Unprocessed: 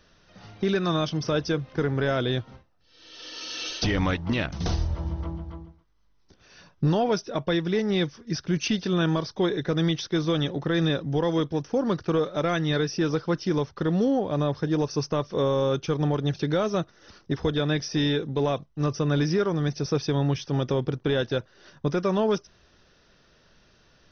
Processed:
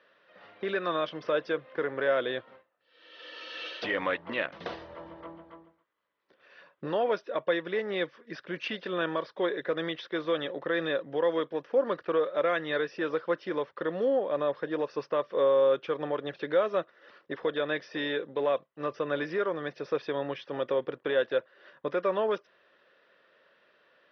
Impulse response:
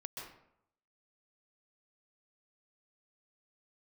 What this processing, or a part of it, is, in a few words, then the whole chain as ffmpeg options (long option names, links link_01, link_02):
phone earpiece: -af "highpass=430,equalizer=frequency=540:width_type=q:width=4:gain=8,equalizer=frequency=790:width_type=q:width=4:gain=-4,equalizer=frequency=1100:width_type=q:width=4:gain=3,equalizer=frequency=1800:width_type=q:width=4:gain=5,lowpass=frequency=3300:width=0.5412,lowpass=frequency=3300:width=1.3066,volume=-3dB"